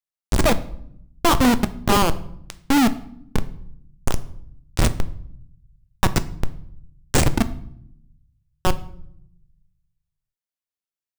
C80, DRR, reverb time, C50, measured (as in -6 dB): 20.0 dB, 11.5 dB, 0.70 s, 16.5 dB